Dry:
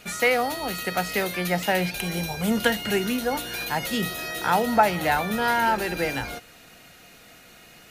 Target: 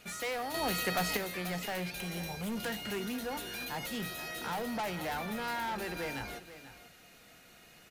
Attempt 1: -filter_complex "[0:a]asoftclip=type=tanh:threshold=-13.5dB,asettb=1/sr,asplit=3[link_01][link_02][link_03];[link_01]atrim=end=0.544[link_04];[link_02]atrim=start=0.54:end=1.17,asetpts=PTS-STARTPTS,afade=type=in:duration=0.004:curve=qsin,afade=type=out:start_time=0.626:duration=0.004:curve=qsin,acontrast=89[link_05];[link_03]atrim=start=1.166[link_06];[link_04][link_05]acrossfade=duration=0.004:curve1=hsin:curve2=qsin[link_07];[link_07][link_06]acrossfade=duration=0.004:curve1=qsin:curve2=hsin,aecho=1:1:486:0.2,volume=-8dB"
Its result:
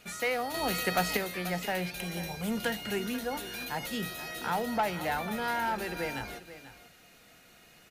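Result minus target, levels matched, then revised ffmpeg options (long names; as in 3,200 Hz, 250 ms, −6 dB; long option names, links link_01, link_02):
soft clipping: distortion −10 dB
-filter_complex "[0:a]asoftclip=type=tanh:threshold=-24.5dB,asettb=1/sr,asplit=3[link_01][link_02][link_03];[link_01]atrim=end=0.544[link_04];[link_02]atrim=start=0.54:end=1.17,asetpts=PTS-STARTPTS,afade=type=in:duration=0.004:curve=qsin,afade=type=out:start_time=0.626:duration=0.004:curve=qsin,acontrast=89[link_05];[link_03]atrim=start=1.166[link_06];[link_04][link_05]acrossfade=duration=0.004:curve1=hsin:curve2=qsin[link_07];[link_07][link_06]acrossfade=duration=0.004:curve1=qsin:curve2=hsin,aecho=1:1:486:0.2,volume=-8dB"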